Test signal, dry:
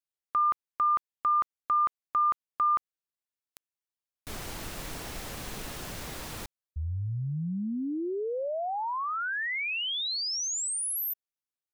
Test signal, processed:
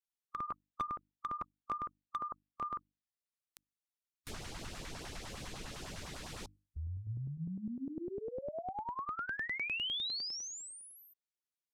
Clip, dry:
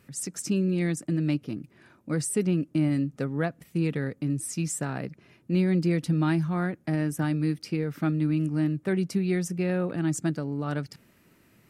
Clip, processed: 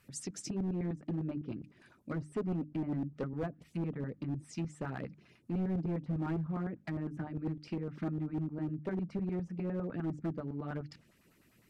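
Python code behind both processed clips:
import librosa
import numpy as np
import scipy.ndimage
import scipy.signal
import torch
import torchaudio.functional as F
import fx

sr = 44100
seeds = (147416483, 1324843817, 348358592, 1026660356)

p1 = fx.env_lowpass_down(x, sr, base_hz=960.0, full_db=-23.5)
p2 = fx.hum_notches(p1, sr, base_hz=50, count=6)
p3 = fx.filter_lfo_notch(p2, sr, shape='saw_up', hz=9.9, low_hz=260.0, high_hz=2500.0, q=0.83)
p4 = fx.hpss(p3, sr, part='harmonic', gain_db=-5)
p5 = 10.0 ** (-28.5 / 20.0) * (np.abs((p4 / 10.0 ** (-28.5 / 20.0) + 3.0) % 4.0 - 2.0) - 1.0)
p6 = p4 + (p5 * librosa.db_to_amplitude(-3.0))
y = p6 * librosa.db_to_amplitude(-7.0)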